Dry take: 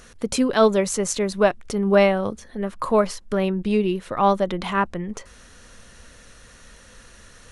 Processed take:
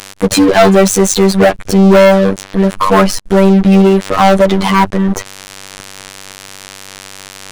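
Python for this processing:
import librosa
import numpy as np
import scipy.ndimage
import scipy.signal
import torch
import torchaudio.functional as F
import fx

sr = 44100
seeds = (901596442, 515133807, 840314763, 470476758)

y = fx.robotise(x, sr, hz=96.7)
y = fx.leveller(y, sr, passes=5)
y = F.gain(torch.from_numpy(y), 2.0).numpy()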